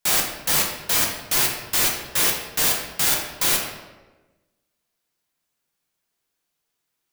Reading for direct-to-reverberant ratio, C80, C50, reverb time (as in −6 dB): −1.0 dB, 6.5 dB, 4.0 dB, 1.2 s